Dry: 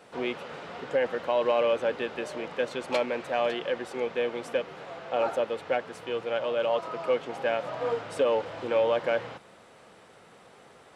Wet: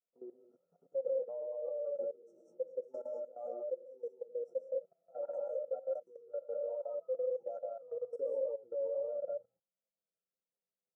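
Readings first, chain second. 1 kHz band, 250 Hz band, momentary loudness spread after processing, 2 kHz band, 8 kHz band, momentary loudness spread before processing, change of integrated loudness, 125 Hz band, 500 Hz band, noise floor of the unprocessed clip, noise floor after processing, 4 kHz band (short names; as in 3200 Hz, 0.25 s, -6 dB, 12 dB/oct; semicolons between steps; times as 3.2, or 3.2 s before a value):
-23.0 dB, under -20 dB, 8 LU, under -40 dB, n/a, 9 LU, -10.5 dB, under -30 dB, -9.5 dB, -54 dBFS, under -85 dBFS, under -40 dB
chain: per-bin expansion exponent 2; non-linear reverb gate 0.23 s rising, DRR -1.5 dB; chorus voices 2, 0.5 Hz, delay 19 ms, depth 4.3 ms; brick-wall FIR band-stop 1400–5300 Hz; level quantiser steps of 18 dB; vowel filter e; gain +4.5 dB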